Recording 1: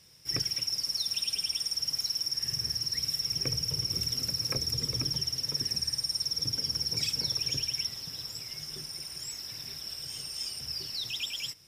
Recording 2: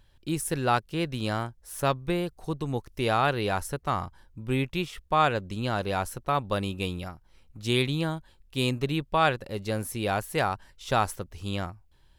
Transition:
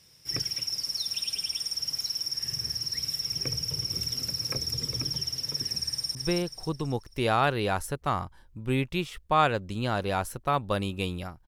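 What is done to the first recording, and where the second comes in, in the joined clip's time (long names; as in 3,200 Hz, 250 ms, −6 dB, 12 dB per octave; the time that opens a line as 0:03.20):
recording 1
0:05.89–0:06.15: delay throw 270 ms, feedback 40%, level −3.5 dB
0:06.15: continue with recording 2 from 0:01.96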